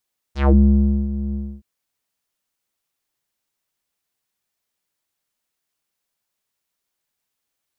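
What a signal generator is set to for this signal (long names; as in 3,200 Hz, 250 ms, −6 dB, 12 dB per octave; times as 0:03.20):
subtractive voice square C#2 12 dB per octave, low-pass 230 Hz, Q 2.8, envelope 5 octaves, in 0.19 s, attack 140 ms, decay 0.59 s, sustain −13.5 dB, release 0.28 s, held 0.99 s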